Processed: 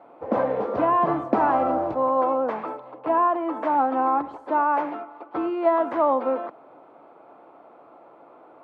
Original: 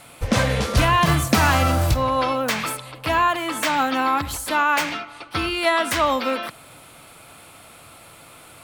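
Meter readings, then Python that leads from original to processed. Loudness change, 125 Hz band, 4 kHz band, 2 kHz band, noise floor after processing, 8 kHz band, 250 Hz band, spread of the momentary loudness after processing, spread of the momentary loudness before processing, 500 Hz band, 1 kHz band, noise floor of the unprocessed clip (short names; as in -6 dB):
-3.0 dB, under -15 dB, under -25 dB, -13.5 dB, -51 dBFS, under -40 dB, -2.0 dB, 10 LU, 9 LU, +2.0 dB, -0.5 dB, -46 dBFS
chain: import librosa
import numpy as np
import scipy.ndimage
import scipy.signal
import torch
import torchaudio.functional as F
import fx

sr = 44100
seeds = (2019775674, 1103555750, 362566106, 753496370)

y = scipy.signal.sosfilt(scipy.signal.cheby1(2, 1.0, [320.0, 900.0], 'bandpass', fs=sr, output='sos'), x)
y = y * librosa.db_to_amplitude(2.5)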